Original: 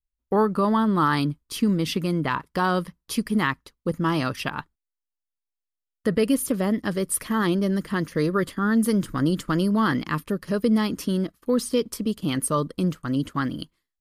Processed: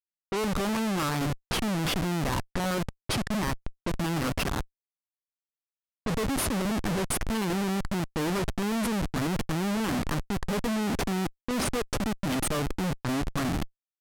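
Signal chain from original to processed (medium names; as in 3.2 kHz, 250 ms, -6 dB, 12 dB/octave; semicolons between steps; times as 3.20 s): peak limiter -17 dBFS, peak gain reduction 6.5 dB; Schmitt trigger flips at -30.5 dBFS; level-controlled noise filter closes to 1.2 kHz, open at -25.5 dBFS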